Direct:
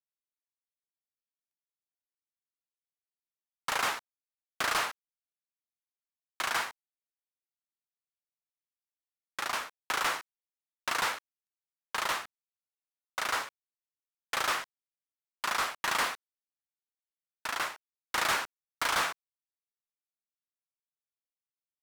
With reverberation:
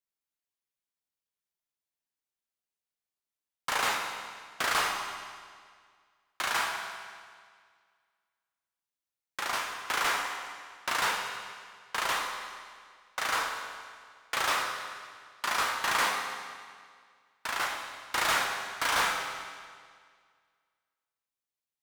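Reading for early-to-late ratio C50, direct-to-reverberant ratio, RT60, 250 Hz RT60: 3.5 dB, 1.0 dB, 1.9 s, 1.9 s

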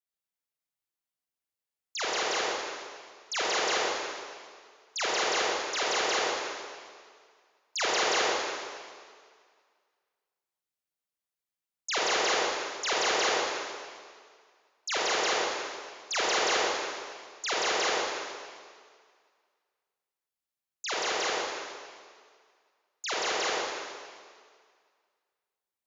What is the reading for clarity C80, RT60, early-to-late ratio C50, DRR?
-1.0 dB, 1.9 s, -3.5 dB, -7.0 dB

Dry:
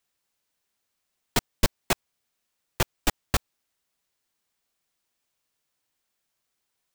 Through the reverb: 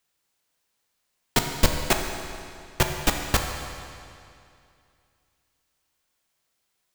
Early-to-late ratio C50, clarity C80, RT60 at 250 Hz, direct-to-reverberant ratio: 4.5 dB, 5.5 dB, 2.5 s, 3.5 dB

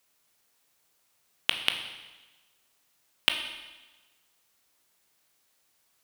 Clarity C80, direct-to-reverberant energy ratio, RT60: 9.0 dB, 4.5 dB, 1.2 s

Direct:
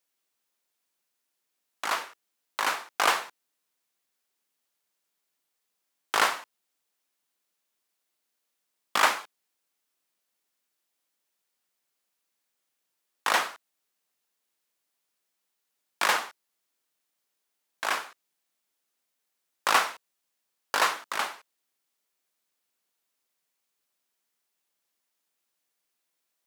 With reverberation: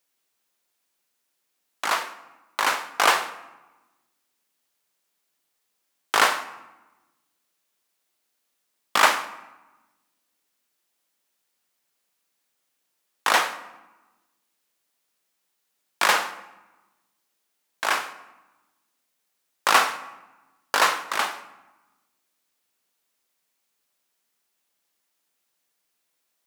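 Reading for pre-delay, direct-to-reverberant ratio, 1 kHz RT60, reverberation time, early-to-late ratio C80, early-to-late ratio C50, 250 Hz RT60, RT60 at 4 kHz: 9 ms, 11.0 dB, 1.2 s, 1.1 s, 15.5 dB, 13.5 dB, 1.5 s, 0.70 s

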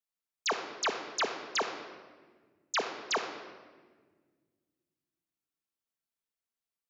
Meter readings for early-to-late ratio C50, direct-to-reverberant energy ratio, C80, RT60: 6.5 dB, 2.0 dB, 8.5 dB, 1.5 s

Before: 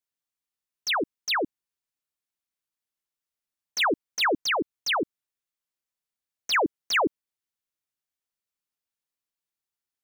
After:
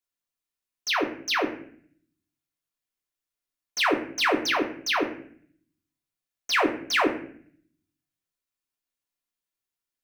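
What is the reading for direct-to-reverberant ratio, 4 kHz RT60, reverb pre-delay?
0.5 dB, 0.40 s, 3 ms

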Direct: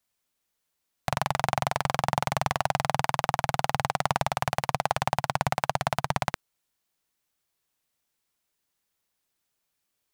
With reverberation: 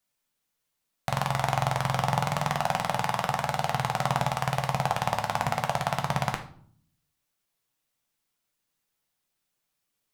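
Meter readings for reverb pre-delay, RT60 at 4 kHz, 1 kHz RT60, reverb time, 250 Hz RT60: 5 ms, 0.40 s, 0.50 s, 0.55 s, 0.85 s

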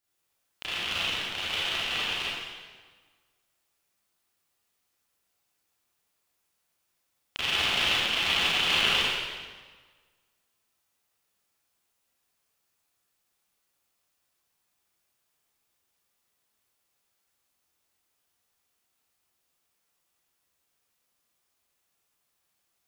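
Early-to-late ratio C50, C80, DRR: -4.5 dB, -0.5 dB, -9.5 dB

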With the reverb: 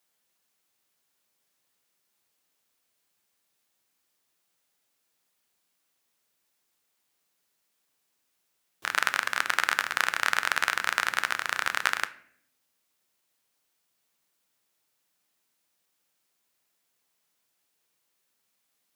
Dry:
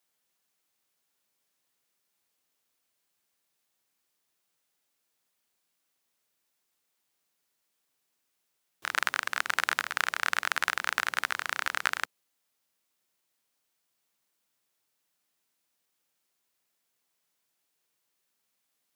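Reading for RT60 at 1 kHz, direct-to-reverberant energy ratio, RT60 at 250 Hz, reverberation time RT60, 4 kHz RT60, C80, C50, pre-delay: 0.55 s, 12.0 dB, 0.95 s, 0.65 s, 0.45 s, 19.5 dB, 17.0 dB, 10 ms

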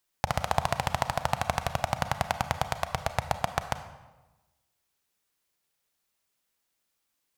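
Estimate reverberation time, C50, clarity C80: 1.1 s, 11.0 dB, 12.5 dB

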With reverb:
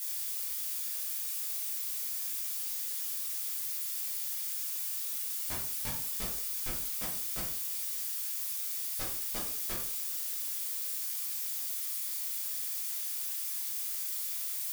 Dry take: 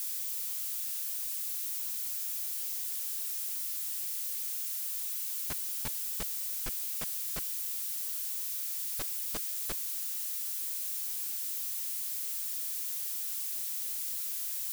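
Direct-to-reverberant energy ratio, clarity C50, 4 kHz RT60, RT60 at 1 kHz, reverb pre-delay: -6.0 dB, 4.5 dB, 0.30 s, 0.50 s, 9 ms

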